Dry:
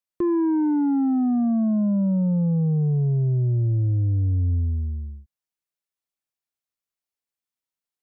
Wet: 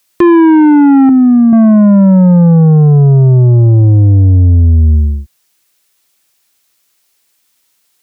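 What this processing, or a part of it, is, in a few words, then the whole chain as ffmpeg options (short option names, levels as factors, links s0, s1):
mastering chain: -filter_complex "[0:a]asettb=1/sr,asplit=3[s0][s1][s2];[s0]atrim=end=1.094[s3];[s1]atrim=start=1.09:end=1.53,asetpts=PTS-STARTPTS,afade=t=in:d=0.004:c=qsin,afade=t=out:st=0.436:d=0.004:c=qsin,highpass=100[s4];[s2]atrim=start=1.526[s5];[s3][s4]acrossfade=d=0.004:c1=hsin:c2=qsin[s6];[s6][s5]acrossfade=d=0.004:c1=qsin:c2=hsin,highpass=f=52:p=1,equalizer=f=340:t=o:w=0.48:g=3.5,acompressor=threshold=0.0562:ratio=1.5,asoftclip=type=tanh:threshold=0.0891,tiltshelf=f=1500:g=-4.5,alimiter=level_in=31.6:limit=0.891:release=50:level=0:latency=1,volume=0.841"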